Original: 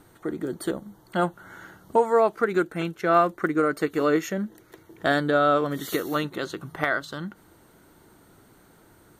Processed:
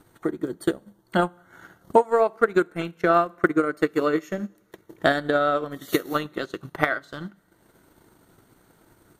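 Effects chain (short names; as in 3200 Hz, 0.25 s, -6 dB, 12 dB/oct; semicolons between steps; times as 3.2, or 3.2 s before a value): two-slope reverb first 0.67 s, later 2.9 s, from -19 dB, DRR 13 dB; transient shaper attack +9 dB, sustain -9 dB; gain -3 dB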